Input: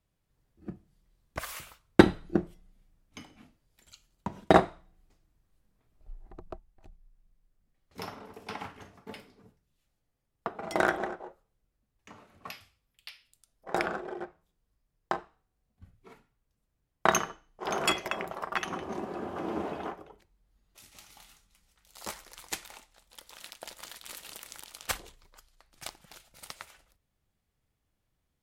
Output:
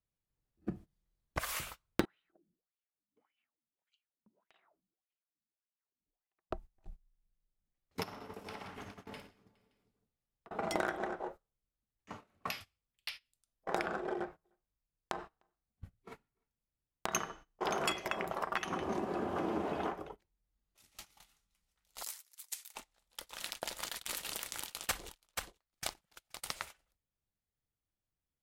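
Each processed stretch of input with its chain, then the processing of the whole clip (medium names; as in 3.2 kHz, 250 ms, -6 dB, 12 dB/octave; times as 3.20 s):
2.05–6.51 s: wah-wah 1.7 Hz 210–3000 Hz, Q 6.3 + compression 5:1, threshold -54 dBFS
8.03–10.51 s: compression 10:1, threshold -48 dBFS + multi-tap echo 55/115/174/184/414/571 ms -7.5/-12/-9/-12.5/-8.5/-12 dB
14.14–17.15 s: compression 5:1, threshold -35 dBFS + delay 302 ms -21.5 dB
22.03–22.75 s: high-pass 180 Hz + differentiator + compression 2:1, threshold -47 dBFS
23.89–26.48 s: gate -52 dBFS, range -12 dB + delay 479 ms -11 dB
whole clip: gate -51 dBFS, range -19 dB; compression 4:1, threshold -38 dBFS; trim +5 dB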